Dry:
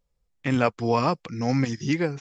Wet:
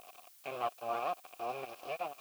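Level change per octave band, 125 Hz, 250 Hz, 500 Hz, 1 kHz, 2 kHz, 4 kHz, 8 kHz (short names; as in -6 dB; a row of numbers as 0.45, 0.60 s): -34.5 dB, -29.5 dB, -13.0 dB, -8.5 dB, -15.0 dB, -13.5 dB, n/a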